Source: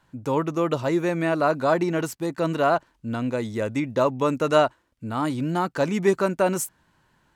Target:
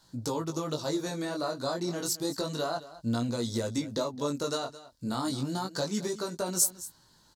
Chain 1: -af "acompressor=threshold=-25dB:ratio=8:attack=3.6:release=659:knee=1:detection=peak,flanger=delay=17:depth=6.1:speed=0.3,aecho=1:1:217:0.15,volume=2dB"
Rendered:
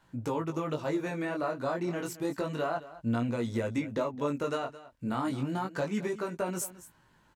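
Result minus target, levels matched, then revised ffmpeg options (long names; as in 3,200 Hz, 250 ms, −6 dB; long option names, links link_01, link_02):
8,000 Hz band −10.5 dB
-af "acompressor=threshold=-25dB:ratio=8:attack=3.6:release=659:knee=1:detection=peak,highshelf=frequency=3300:width_type=q:width=3:gain=10,flanger=delay=17:depth=6.1:speed=0.3,aecho=1:1:217:0.15,volume=2dB"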